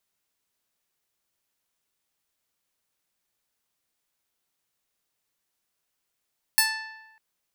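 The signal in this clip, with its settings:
Karplus-Strong string A5, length 0.60 s, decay 1.08 s, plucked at 0.24, bright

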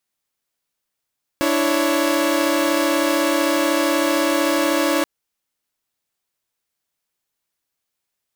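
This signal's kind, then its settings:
held notes D4/E4/C#5 saw, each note −18.5 dBFS 3.63 s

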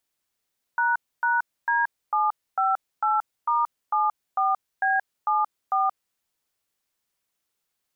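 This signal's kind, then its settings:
touch tones "##D758*74B74", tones 177 ms, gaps 272 ms, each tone −22 dBFS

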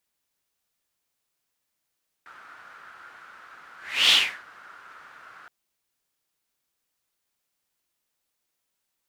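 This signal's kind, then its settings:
pass-by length 3.22 s, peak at 0:01.85, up 0.36 s, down 0.35 s, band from 1,400 Hz, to 3,300 Hz, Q 5.1, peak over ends 31 dB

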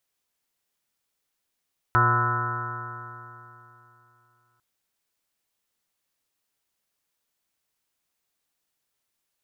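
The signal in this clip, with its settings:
stiff-string partials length 2.65 s, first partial 118 Hz, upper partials −15.5/−9/−18/−19/−11/−16.5/−1/−11/2.5/−2/−19.5/−16.5 dB, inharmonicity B 0.0023, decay 3.05 s, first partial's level −21.5 dB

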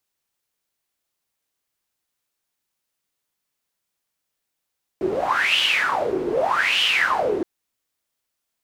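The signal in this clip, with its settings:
wind from filtered noise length 2.42 s, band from 360 Hz, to 3,000 Hz, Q 9.3, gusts 2, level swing 4 dB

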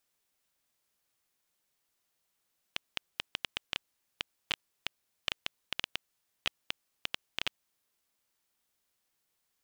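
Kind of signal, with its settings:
Geiger counter clicks 5.5 per second −12.5 dBFS 5.72 s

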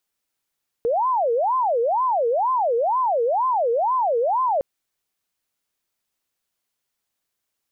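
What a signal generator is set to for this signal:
siren wail 459–1,040 Hz 2.1 per second sine −17.5 dBFS 3.76 s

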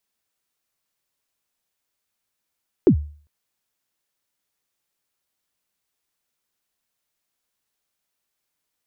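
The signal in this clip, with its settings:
synth kick length 0.40 s, from 430 Hz, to 74 Hz, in 87 ms, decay 0.44 s, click off, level −6.5 dB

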